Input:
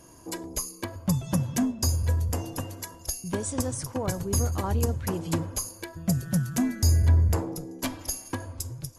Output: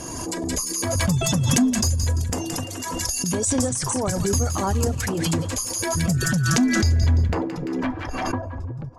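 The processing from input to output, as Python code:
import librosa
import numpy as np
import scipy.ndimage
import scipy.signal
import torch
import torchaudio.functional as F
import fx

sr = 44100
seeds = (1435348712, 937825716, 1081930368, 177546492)

p1 = fx.dereverb_blind(x, sr, rt60_s=0.79)
p2 = fx.transient(p1, sr, attack_db=-3, sustain_db=8)
p3 = fx.rider(p2, sr, range_db=4, speed_s=2.0)
p4 = p2 + (p3 * librosa.db_to_amplitude(-2.0))
p5 = fx.mod_noise(p4, sr, seeds[0], snr_db=32, at=(4.51, 6.04))
p6 = fx.filter_sweep_lowpass(p5, sr, from_hz=8300.0, to_hz=890.0, start_s=6.15, end_s=8.58, q=1.4)
p7 = np.clip(p6, -10.0 ** (-12.5 / 20.0), 10.0 ** (-12.5 / 20.0))
p8 = fx.comb_fb(p7, sr, f0_hz=250.0, decay_s=0.18, harmonics='odd', damping=0.0, mix_pct=50)
p9 = p8 + fx.echo_wet_highpass(p8, sr, ms=171, feedback_pct=35, hz=1500.0, wet_db=-7, dry=0)
p10 = fx.pre_swell(p9, sr, db_per_s=23.0)
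y = p10 * librosa.db_to_amplitude(4.0)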